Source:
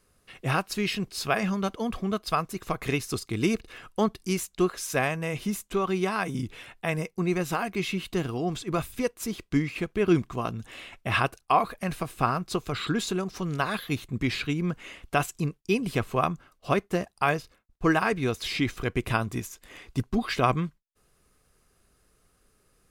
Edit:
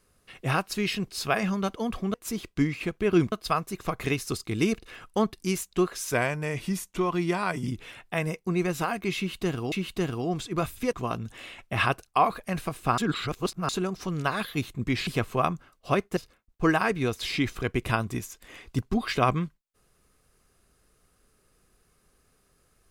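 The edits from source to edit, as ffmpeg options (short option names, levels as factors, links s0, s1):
-filter_complex "[0:a]asplit=11[s0][s1][s2][s3][s4][s5][s6][s7][s8][s9][s10];[s0]atrim=end=2.142[s11];[s1]atrim=start=9.088:end=10.272[s12];[s2]atrim=start=2.138:end=4.944[s13];[s3]atrim=start=4.94:end=6.38,asetpts=PTS-STARTPTS,asetrate=41013,aresample=44100[s14];[s4]atrim=start=6.376:end=8.432[s15];[s5]atrim=start=7.878:end=9.092[s16];[s6]atrim=start=10.268:end=12.322[s17];[s7]atrim=start=12.318:end=13.032,asetpts=PTS-STARTPTS,areverse[s18];[s8]atrim=start=13.028:end=14.412[s19];[s9]atrim=start=15.858:end=16.962[s20];[s10]atrim=start=17.378[s21];[s11][s12]acrossfade=d=0.004:c1=hsin:c2=hsin[s22];[s22][s13]acrossfade=d=0.004:c1=hsin:c2=hsin[s23];[s23][s14]acrossfade=d=0.004:c1=hsin:c2=hsin[s24];[s24][s15]acrossfade=d=0.004:c1=hsin:c2=hsin[s25];[s25][s16]acrossfade=d=0.004:c1=hsin:c2=hsin[s26];[s26][s17]acrossfade=d=0.004:c1=hsin:c2=hsin[s27];[s27][s18]acrossfade=d=0.004:c1=hsin:c2=hsin[s28];[s28][s19]acrossfade=d=0.004:c1=hsin:c2=hsin[s29];[s29][s20]acrossfade=d=0.004:c1=hsin:c2=hsin[s30];[s30][s21]acrossfade=d=0.004:c1=hsin:c2=hsin"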